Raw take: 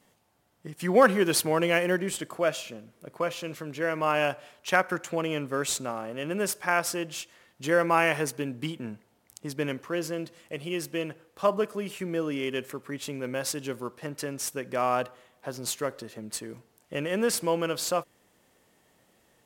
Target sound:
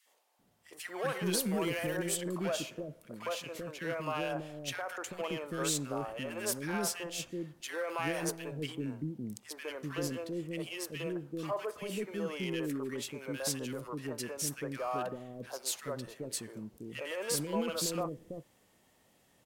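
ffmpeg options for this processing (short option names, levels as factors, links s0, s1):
-filter_complex "[0:a]asettb=1/sr,asplit=3[s0][s1][s2];[s0]atrim=end=1.404[s3];[s1]atrim=start=1.4:end=2.16,asetpts=PTS-STARTPTS,afade=t=in:d=0.004:c=qsin,afade=t=out:st=0.756:d=0.004:c=qsin,highshelf=f=6200:g=9[s4];[s2]atrim=start=2.156[s5];[s3][s4]acrossfade=d=0.004:c1=hsin:c2=qsin[s6];[s6][s5]acrossfade=d=0.004:c1=qsin:c2=hsin,alimiter=limit=0.112:level=0:latency=1:release=14,asoftclip=type=tanh:threshold=0.0944,acrossover=split=430|1500[s7][s8][s9];[s8]adelay=60[s10];[s7]adelay=390[s11];[s11][s10][s9]amix=inputs=3:normalize=0,volume=0.794"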